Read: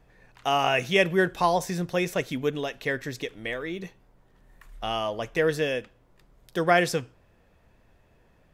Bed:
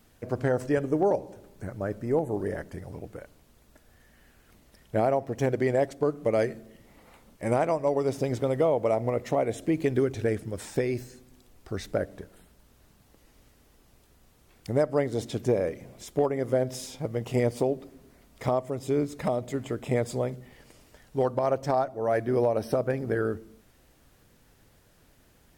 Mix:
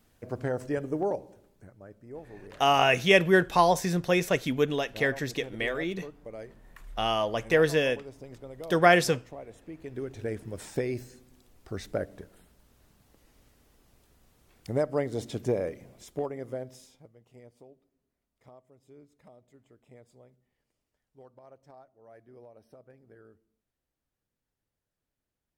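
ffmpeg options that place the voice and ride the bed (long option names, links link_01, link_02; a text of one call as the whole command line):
ffmpeg -i stem1.wav -i stem2.wav -filter_complex "[0:a]adelay=2150,volume=1.5dB[link_01];[1:a]volume=9.5dB,afade=type=out:start_time=1.07:duration=0.68:silence=0.237137,afade=type=in:start_time=9.82:duration=0.81:silence=0.188365,afade=type=out:start_time=15.52:duration=1.62:silence=0.0595662[link_02];[link_01][link_02]amix=inputs=2:normalize=0" out.wav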